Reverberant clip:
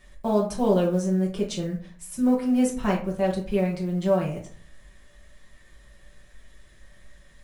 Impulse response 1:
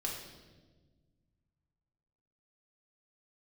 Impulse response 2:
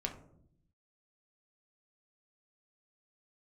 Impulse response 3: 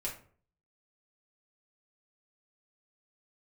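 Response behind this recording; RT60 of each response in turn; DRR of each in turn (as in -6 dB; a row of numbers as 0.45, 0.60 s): 3; 1.4, 0.70, 0.50 s; -3.0, 2.0, -4.5 dB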